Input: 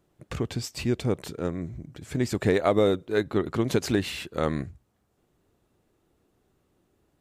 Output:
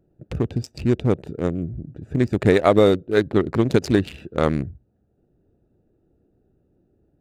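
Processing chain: local Wiener filter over 41 samples; trim +7 dB

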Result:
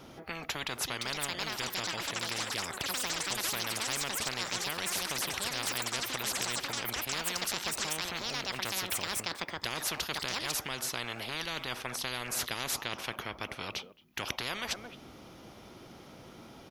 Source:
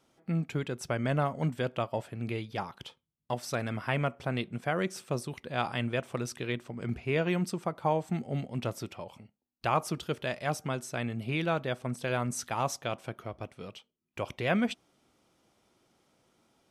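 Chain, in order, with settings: peaking EQ 8.2 kHz -13.5 dB 0.41 oct; ever faster or slower copies 683 ms, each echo +7 st, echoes 3, each echo -6 dB; bass shelf 230 Hz +4.5 dB; speakerphone echo 220 ms, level -28 dB; spectrum-flattening compressor 10:1; trim -1.5 dB

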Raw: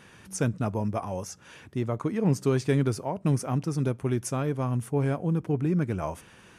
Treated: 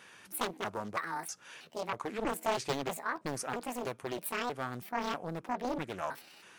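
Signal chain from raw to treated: pitch shift switched off and on +8.5 st, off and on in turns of 321 ms; high-pass 840 Hz 6 dB/octave; loudspeaker Doppler distortion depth 0.8 ms

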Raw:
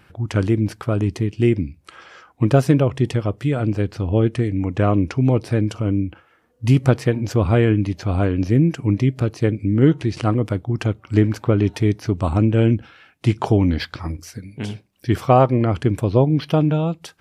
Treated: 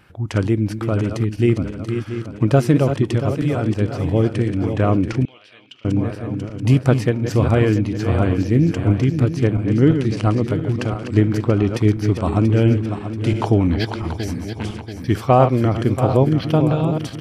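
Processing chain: backward echo that repeats 342 ms, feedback 68%, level -8 dB; 5.25–5.85 s: band-pass filter 3.1 kHz, Q 4.9

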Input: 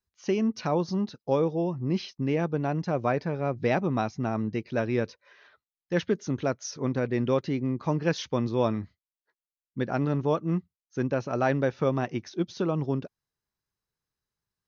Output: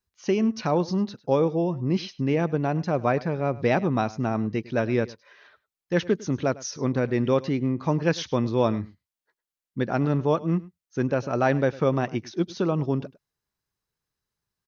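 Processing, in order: delay 103 ms -20 dB; trim +3 dB

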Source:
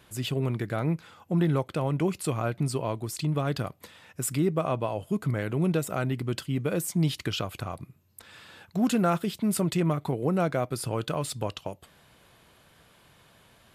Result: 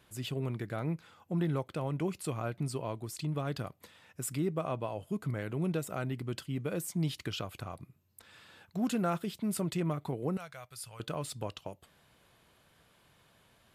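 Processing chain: 10.37–11.00 s: amplifier tone stack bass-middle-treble 10-0-10; trim -7 dB

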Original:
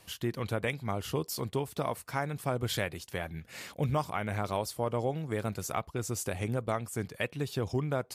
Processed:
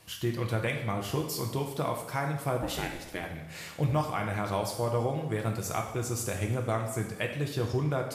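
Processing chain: 2.61–3.21 s: ring modulator 470 Hz -> 81 Hz; two-slope reverb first 0.84 s, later 3 s, DRR 2 dB

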